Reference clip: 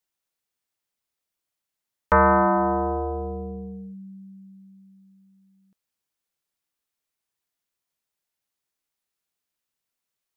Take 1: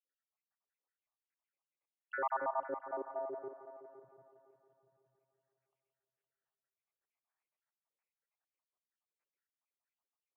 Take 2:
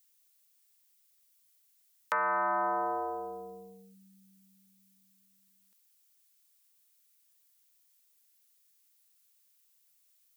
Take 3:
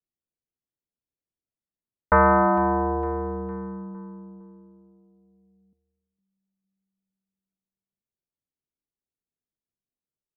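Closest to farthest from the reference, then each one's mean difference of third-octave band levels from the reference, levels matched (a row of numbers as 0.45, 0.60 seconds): 3, 2, 1; 3.5, 6.0, 9.5 decibels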